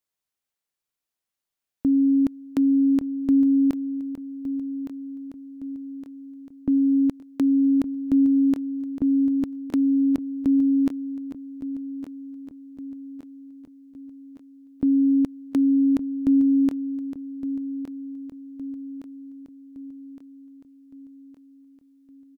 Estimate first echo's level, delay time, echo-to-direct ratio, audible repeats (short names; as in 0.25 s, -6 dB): -12.0 dB, 1.164 s, -10.5 dB, 5